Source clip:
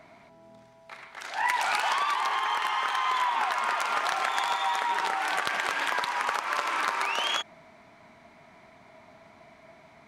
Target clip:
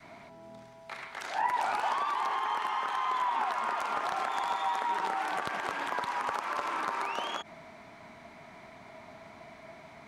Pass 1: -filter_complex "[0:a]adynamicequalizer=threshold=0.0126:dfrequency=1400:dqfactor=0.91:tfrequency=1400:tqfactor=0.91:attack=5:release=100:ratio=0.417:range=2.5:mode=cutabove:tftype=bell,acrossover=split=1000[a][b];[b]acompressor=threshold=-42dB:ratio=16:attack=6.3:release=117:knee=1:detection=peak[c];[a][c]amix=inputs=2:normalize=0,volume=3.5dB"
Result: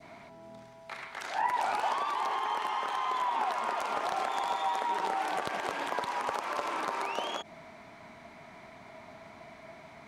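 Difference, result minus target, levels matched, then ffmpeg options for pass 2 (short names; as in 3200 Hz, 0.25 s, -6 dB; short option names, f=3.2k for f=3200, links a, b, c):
500 Hz band +3.5 dB
-filter_complex "[0:a]adynamicequalizer=threshold=0.0126:dfrequency=550:dqfactor=0.91:tfrequency=550:tqfactor=0.91:attack=5:release=100:ratio=0.417:range=2.5:mode=cutabove:tftype=bell,acrossover=split=1000[a][b];[b]acompressor=threshold=-42dB:ratio=16:attack=6.3:release=117:knee=1:detection=peak[c];[a][c]amix=inputs=2:normalize=0,volume=3.5dB"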